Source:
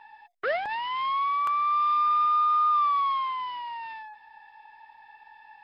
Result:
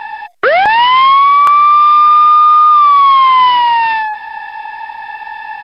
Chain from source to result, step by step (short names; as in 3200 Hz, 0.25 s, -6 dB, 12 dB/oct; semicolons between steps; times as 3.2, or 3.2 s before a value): downsampling 32000 Hz; maximiser +27.5 dB; gain -1.5 dB